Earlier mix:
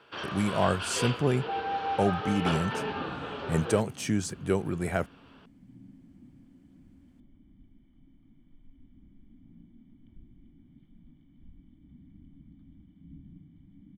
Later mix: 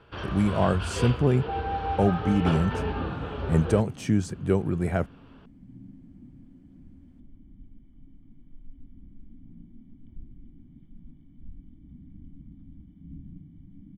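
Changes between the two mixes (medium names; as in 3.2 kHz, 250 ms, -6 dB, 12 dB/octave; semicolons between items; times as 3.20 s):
first sound: remove high-pass 170 Hz 12 dB/octave; master: add tilt EQ -2 dB/octave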